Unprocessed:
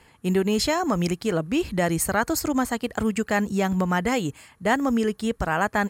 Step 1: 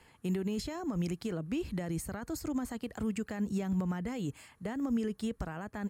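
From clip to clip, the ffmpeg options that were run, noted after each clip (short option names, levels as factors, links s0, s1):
-filter_complex "[0:a]alimiter=limit=0.133:level=0:latency=1:release=25,acrossover=split=350[s0][s1];[s1]acompressor=threshold=0.0158:ratio=4[s2];[s0][s2]amix=inputs=2:normalize=0,volume=0.501"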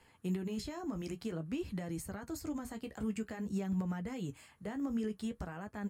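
-af "flanger=delay=9.7:depth=5:regen=-40:speed=0.52:shape=sinusoidal"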